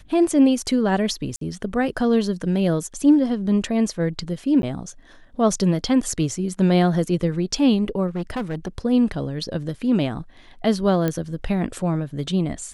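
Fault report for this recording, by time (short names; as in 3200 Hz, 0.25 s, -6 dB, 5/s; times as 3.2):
1.36–1.41 gap 53 ms
4.62–4.63 gap
8.07–8.68 clipped -22 dBFS
11.08 pop -10 dBFS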